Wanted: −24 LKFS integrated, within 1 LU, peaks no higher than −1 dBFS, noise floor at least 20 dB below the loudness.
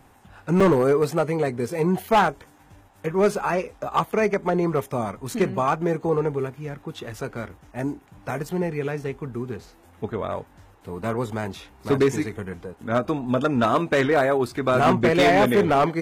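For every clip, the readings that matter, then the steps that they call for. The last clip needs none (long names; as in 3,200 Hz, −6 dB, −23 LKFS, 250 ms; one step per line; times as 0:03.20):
share of clipped samples 0.9%; peaks flattened at −12.5 dBFS; number of dropouts 1; longest dropout 4.5 ms; integrated loudness −23.0 LKFS; sample peak −12.5 dBFS; target loudness −24.0 LKFS
→ clipped peaks rebuilt −12.5 dBFS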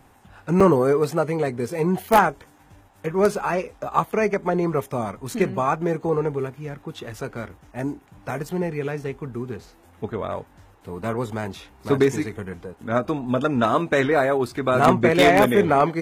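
share of clipped samples 0.0%; number of dropouts 1; longest dropout 4.5 ms
→ repair the gap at 0:00.60, 4.5 ms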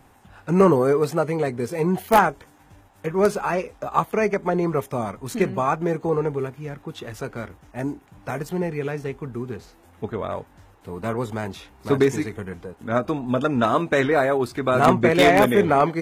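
number of dropouts 0; integrated loudness −22.0 LKFS; sample peak −3.5 dBFS; target loudness −24.0 LKFS
→ level −2 dB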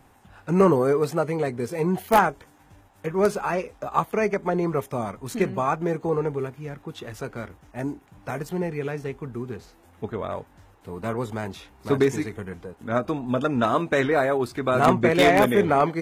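integrated loudness −24.0 LKFS; sample peak −5.5 dBFS; background noise floor −56 dBFS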